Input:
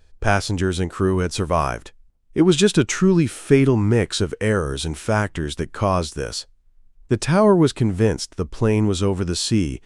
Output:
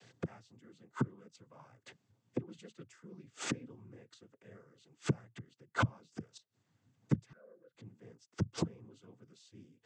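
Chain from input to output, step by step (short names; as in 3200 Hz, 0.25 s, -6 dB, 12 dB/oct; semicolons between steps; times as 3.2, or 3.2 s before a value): flipped gate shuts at -18 dBFS, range -41 dB; noise vocoder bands 16; 7.33–7.75 double band-pass 880 Hz, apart 1.5 oct; gain +3.5 dB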